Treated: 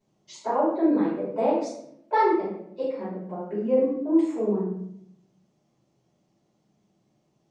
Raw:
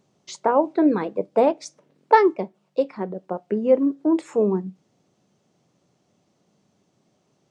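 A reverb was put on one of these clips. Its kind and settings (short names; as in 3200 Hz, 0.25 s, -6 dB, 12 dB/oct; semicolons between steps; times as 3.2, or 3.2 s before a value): shoebox room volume 150 m³, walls mixed, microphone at 4.9 m; gain -19.5 dB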